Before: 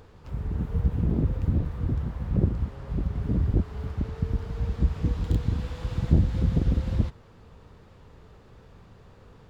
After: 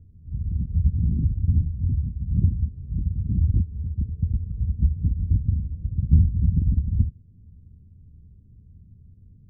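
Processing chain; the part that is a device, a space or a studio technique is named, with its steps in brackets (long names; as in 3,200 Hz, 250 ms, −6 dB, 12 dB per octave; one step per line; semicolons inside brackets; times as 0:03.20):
the neighbour's flat through the wall (low-pass filter 230 Hz 24 dB per octave; parametric band 83 Hz +7 dB 0.62 octaves)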